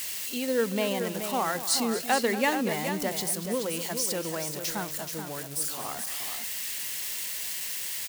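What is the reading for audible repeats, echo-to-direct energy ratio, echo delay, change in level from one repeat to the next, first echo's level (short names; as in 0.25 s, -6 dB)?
2, -7.0 dB, 0.234 s, no steady repeat, -13.5 dB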